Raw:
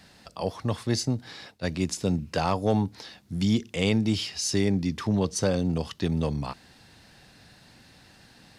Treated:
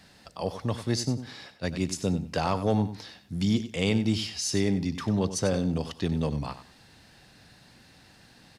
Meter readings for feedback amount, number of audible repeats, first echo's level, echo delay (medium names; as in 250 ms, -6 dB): 20%, 2, -12.0 dB, 94 ms